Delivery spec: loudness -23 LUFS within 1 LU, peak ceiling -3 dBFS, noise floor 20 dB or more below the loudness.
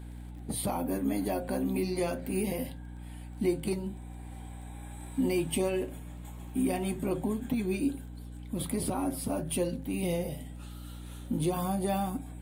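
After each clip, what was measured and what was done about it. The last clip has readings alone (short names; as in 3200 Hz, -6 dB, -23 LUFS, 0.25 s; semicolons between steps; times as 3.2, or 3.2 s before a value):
ticks 19/s; hum 60 Hz; harmonics up to 300 Hz; hum level -41 dBFS; loudness -32.5 LUFS; peak -17.5 dBFS; loudness target -23.0 LUFS
-> de-click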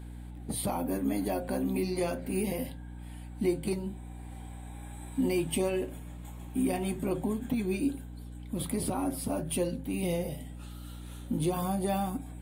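ticks 0/s; hum 60 Hz; harmonics up to 300 Hz; hum level -41 dBFS
-> de-hum 60 Hz, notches 5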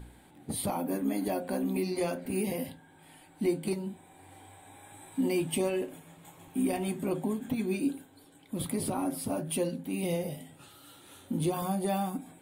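hum none; loudness -32.5 LUFS; peak -18.0 dBFS; loudness target -23.0 LUFS
-> gain +9.5 dB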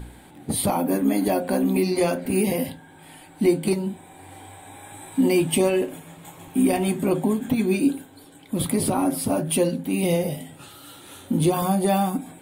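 loudness -23.0 LUFS; peak -8.5 dBFS; noise floor -48 dBFS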